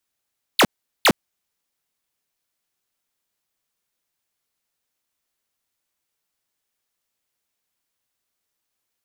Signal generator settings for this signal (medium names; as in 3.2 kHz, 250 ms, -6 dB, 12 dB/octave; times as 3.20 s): burst of laser zaps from 4.9 kHz, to 140 Hz, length 0.06 s square, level -13 dB, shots 2, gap 0.40 s